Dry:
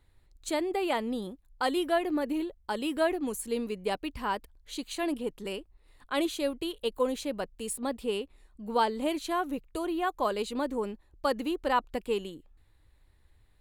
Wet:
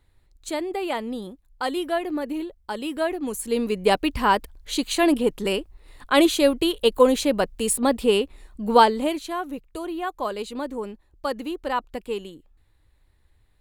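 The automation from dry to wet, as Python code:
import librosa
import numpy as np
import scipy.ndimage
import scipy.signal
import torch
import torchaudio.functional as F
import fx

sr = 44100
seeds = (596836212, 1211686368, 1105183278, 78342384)

y = fx.gain(x, sr, db=fx.line((3.12, 2.0), (3.89, 12.0), (8.78, 12.0), (9.28, 1.0)))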